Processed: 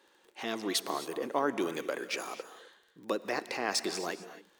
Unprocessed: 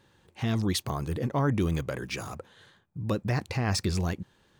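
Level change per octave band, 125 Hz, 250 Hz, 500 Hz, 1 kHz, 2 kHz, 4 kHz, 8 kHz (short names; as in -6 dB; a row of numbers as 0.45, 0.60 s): -26.5, -7.0, 0.0, +0.5, +0.5, +0.5, +0.5 dB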